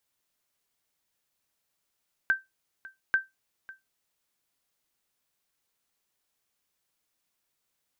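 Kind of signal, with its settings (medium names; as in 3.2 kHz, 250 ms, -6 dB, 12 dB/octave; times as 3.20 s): sonar ping 1.56 kHz, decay 0.18 s, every 0.84 s, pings 2, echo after 0.55 s, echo -20.5 dB -15.5 dBFS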